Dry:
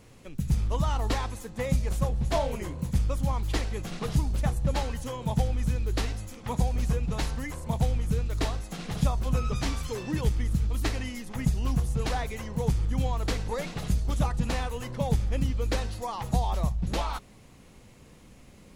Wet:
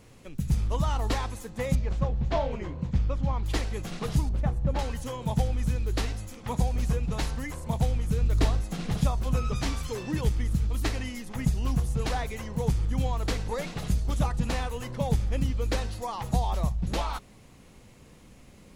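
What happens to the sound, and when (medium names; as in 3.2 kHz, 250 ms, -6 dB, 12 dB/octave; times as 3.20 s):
1.75–3.46 s: distance through air 160 m
4.29–4.79 s: low-pass 1.3 kHz 6 dB/octave
8.21–8.97 s: bass shelf 320 Hz +6.5 dB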